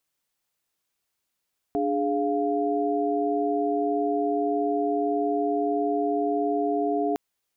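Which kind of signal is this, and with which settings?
chord D4/G#4/F5 sine, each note -26.5 dBFS 5.41 s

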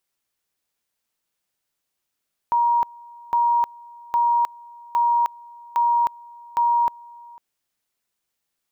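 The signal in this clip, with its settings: two-level tone 947 Hz -15.5 dBFS, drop 24.5 dB, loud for 0.31 s, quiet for 0.50 s, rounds 6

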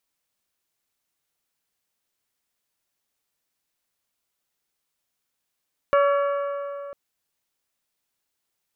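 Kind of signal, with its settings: metal hit bell, length 1.00 s, lowest mode 566 Hz, modes 6, decay 3.11 s, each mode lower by 5 dB, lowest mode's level -15.5 dB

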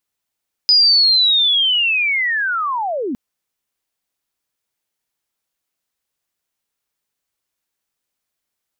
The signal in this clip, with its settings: chirp linear 5000 Hz -> 220 Hz -8 dBFS -> -19.5 dBFS 2.46 s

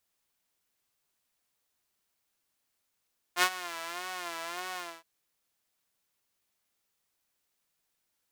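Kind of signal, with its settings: synth patch with vibrato F4, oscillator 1 saw, sub -8 dB, filter highpass, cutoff 780 Hz, Q 0.95, filter envelope 0.5 oct, filter decay 1.06 s, attack 63 ms, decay 0.07 s, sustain -17 dB, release 0.25 s, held 1.42 s, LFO 1.7 Hz, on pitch 100 cents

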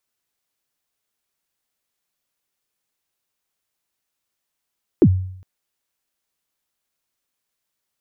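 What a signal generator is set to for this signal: kick drum length 0.41 s, from 420 Hz, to 93 Hz, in 61 ms, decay 0.67 s, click off, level -5.5 dB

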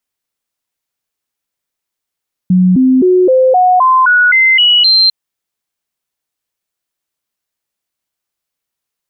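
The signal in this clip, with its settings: stepped sine 183 Hz up, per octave 2, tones 10, 0.26 s, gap 0.00 s -5 dBFS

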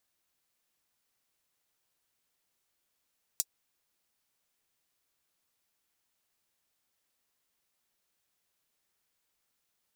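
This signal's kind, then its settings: closed hi-hat, high-pass 5800 Hz, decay 0.05 s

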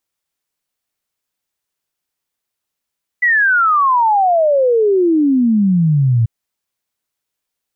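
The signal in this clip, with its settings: log sweep 2000 Hz -> 110 Hz 3.04 s -9.5 dBFS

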